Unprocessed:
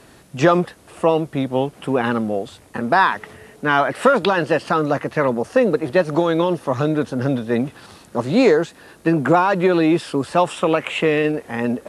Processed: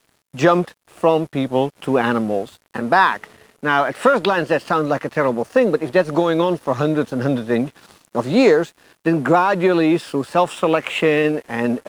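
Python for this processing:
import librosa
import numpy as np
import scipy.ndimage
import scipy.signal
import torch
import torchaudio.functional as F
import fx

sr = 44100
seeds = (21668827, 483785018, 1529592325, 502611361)

p1 = fx.low_shelf(x, sr, hz=71.0, db=-10.5)
p2 = np.sign(p1) * np.maximum(np.abs(p1) - 10.0 ** (-44.0 / 20.0), 0.0)
p3 = fx.rider(p2, sr, range_db=10, speed_s=2.0)
p4 = p2 + (p3 * 10.0 ** (0.0 / 20.0))
y = p4 * 10.0 ** (-5.0 / 20.0)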